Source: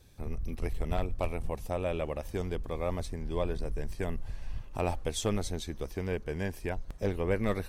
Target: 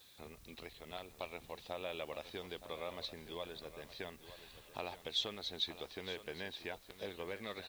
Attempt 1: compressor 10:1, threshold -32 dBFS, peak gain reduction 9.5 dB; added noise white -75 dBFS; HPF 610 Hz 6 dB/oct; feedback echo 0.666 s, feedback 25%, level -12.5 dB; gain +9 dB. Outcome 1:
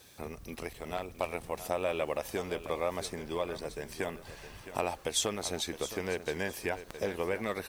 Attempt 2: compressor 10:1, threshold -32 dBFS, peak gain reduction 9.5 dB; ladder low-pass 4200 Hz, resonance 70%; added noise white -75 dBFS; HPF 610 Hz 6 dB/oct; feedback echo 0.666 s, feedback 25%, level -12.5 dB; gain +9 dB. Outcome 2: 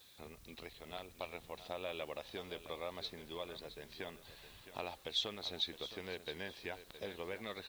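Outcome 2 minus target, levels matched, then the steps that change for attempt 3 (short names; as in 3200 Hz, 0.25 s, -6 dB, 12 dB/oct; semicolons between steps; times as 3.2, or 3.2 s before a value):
echo 0.253 s early
change: feedback echo 0.919 s, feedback 25%, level -12.5 dB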